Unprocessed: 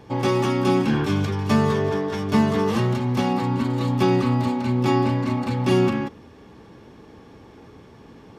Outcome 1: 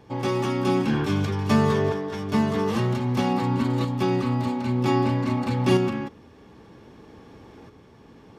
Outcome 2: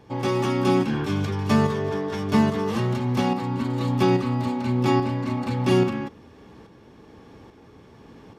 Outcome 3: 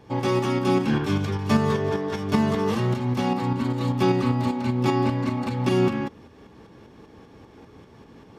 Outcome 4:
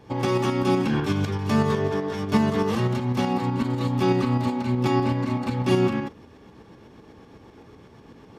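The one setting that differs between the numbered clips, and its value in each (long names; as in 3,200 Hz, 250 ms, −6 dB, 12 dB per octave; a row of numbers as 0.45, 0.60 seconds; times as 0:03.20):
shaped tremolo, speed: 0.52, 1.2, 5.1, 8 Hertz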